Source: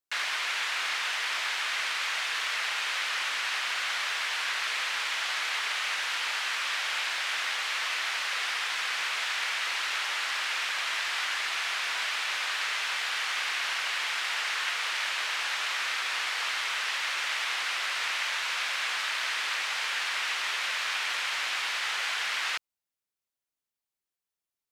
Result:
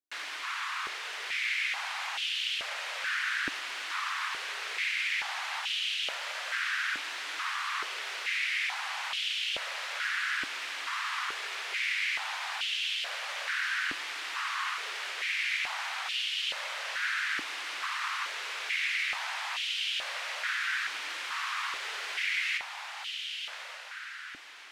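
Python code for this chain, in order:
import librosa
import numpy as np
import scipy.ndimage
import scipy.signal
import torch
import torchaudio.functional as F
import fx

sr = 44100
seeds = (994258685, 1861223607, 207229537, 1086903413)

y = fx.echo_diffused(x, sr, ms=1209, feedback_pct=48, wet_db=-5.0)
y = fx.filter_held_highpass(y, sr, hz=2.3, low_hz=290.0, high_hz=3000.0)
y = y * librosa.db_to_amplitude(-8.5)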